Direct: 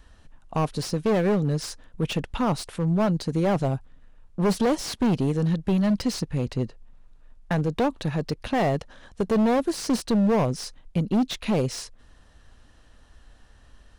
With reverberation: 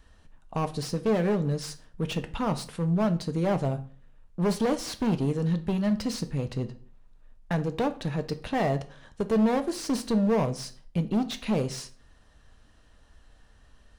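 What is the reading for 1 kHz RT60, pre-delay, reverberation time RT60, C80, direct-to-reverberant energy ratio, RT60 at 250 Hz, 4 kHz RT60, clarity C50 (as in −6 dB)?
0.45 s, 3 ms, 0.45 s, 20.5 dB, 8.0 dB, 0.55 s, 0.35 s, 15.5 dB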